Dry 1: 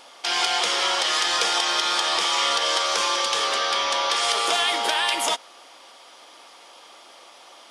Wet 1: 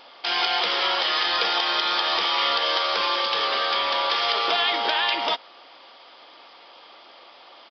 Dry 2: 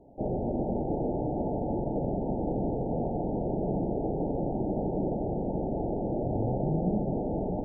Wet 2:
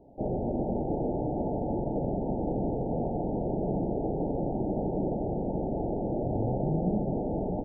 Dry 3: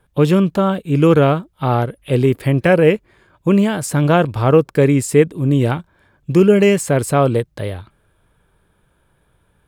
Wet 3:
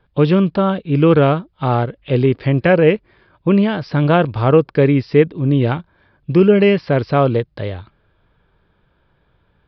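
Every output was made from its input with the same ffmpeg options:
-af "aresample=11025,aresample=44100"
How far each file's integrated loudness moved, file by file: -0.5, 0.0, 0.0 LU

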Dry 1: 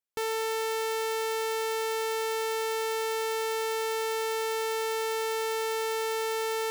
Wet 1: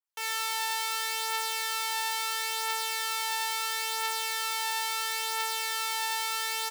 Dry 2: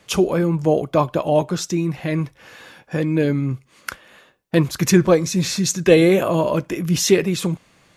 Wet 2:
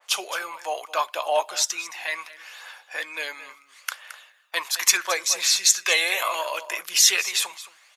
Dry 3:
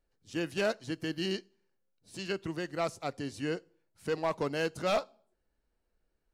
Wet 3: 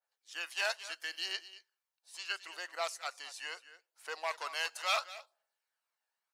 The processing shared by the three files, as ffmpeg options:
-filter_complex "[0:a]highpass=f=760:w=0.5412,highpass=f=760:w=1.3066,asplit=2[a][b];[b]aecho=0:1:220:0.168[c];[a][c]amix=inputs=2:normalize=0,aphaser=in_gain=1:out_gain=1:delay=1.2:decay=0.36:speed=0.74:type=triangular,adynamicequalizer=threshold=0.01:dfrequency=1600:dqfactor=0.7:tfrequency=1600:tqfactor=0.7:attack=5:release=100:ratio=0.375:range=3:mode=boostabove:tftype=highshelf,volume=-1dB"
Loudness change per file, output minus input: +0.5, -3.5, -3.0 LU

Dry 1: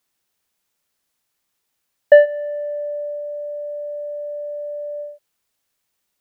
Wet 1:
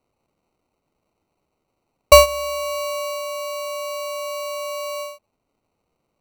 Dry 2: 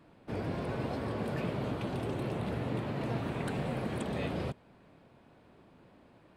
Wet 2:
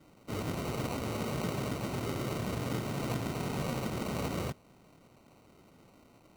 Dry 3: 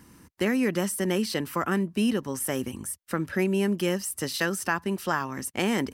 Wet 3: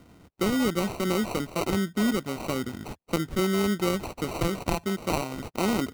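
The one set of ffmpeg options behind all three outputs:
-filter_complex "[0:a]acrossover=split=9500[a][b];[b]acompressor=threshold=-50dB:ratio=4:attack=1:release=60[c];[a][c]amix=inputs=2:normalize=0,acrusher=samples=26:mix=1:aa=0.000001"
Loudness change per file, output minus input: +1.0, 0.0, -0.5 LU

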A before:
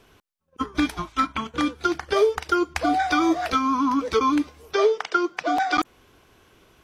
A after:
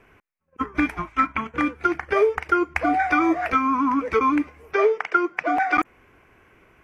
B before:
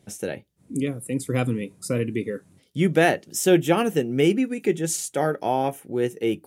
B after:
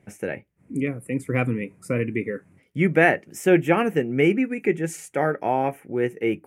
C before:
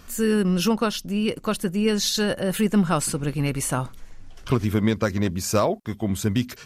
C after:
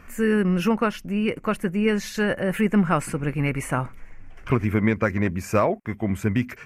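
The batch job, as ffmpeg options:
-af "highshelf=f=2.9k:t=q:w=3:g=-9"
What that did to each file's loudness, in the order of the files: +1.0, +0.5, 0.0 LU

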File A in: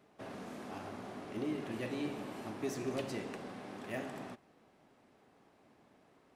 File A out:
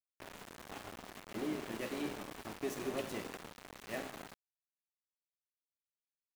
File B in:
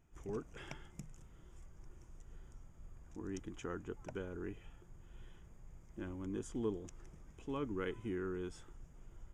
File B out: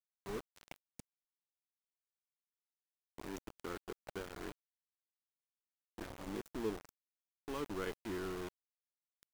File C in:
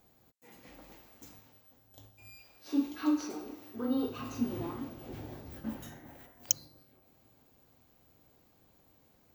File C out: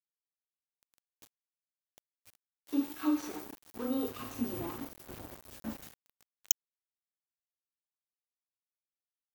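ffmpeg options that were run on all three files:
-af "equalizer=f=125:t=o:w=0.33:g=-8,equalizer=f=250:t=o:w=0.33:g=-3,equalizer=f=5k:t=o:w=0.33:g=-9,equalizer=f=16k:t=o:w=0.33:g=8,aeval=exprs='val(0)*gte(abs(val(0)),0.00841)':c=same"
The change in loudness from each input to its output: -1.5, -0.5, -1.0 LU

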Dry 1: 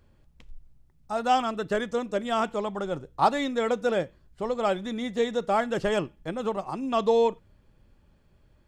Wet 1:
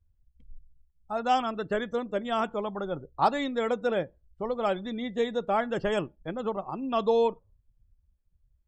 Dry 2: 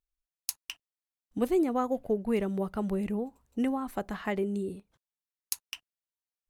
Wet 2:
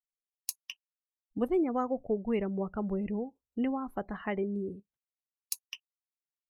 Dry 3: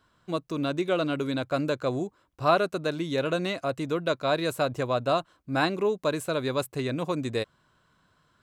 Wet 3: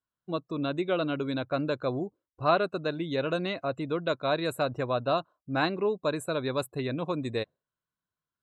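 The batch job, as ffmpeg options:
-af "afftdn=nr=26:nf=-45,volume=-2dB"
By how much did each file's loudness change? -2.0, -2.0, -2.0 LU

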